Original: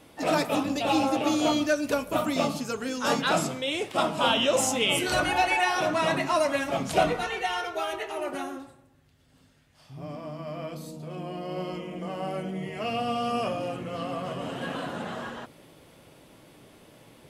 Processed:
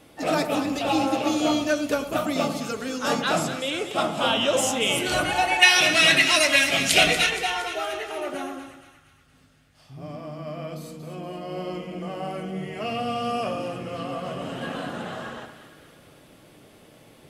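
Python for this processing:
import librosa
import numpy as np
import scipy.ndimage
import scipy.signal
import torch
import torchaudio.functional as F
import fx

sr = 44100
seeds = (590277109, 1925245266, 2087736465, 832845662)

y = fx.high_shelf_res(x, sr, hz=1600.0, db=13.0, q=1.5, at=(5.61, 7.29), fade=0.02)
y = fx.notch(y, sr, hz=970.0, q=13.0)
y = fx.echo_split(y, sr, split_hz=1200.0, low_ms=99, high_ms=235, feedback_pct=52, wet_db=-10.0)
y = y * 10.0 ** (1.0 / 20.0)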